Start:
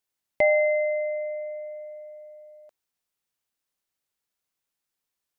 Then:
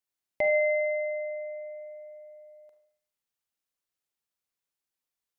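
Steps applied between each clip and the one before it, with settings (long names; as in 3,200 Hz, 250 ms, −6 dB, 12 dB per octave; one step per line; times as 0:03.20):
feedback echo with a high-pass in the loop 73 ms, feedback 73%, high-pass 960 Hz, level −14.5 dB
four-comb reverb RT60 0.52 s, combs from 33 ms, DRR 7 dB
level −6 dB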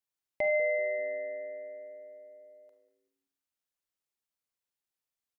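echo with shifted repeats 192 ms, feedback 33%, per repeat −110 Hz, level −16 dB
level −3.5 dB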